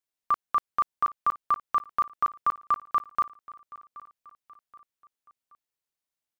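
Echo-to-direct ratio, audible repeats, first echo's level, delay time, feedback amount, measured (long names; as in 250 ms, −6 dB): −19.0 dB, 3, −20.0 dB, 776 ms, 45%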